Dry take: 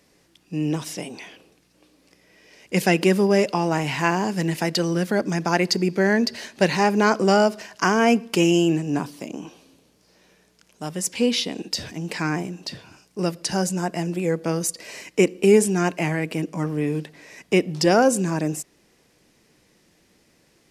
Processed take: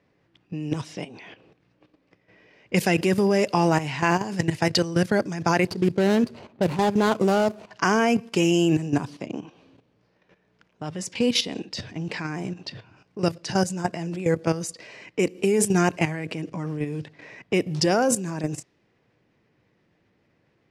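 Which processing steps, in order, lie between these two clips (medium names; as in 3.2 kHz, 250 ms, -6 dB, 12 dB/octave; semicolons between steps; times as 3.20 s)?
5.67–7.71 s: median filter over 25 samples; level-controlled noise filter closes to 2.3 kHz, open at -17 dBFS; bass shelf 170 Hz -7.5 dB; level held to a coarse grid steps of 12 dB; peaking EQ 110 Hz +12 dB 0.91 oct; trim +3.5 dB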